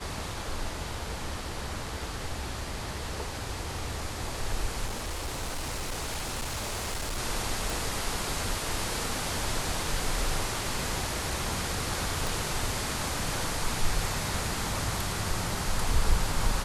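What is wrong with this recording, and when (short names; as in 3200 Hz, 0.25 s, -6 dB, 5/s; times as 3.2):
4.86–7.19 clipped -29 dBFS
7.7 pop
12.27 pop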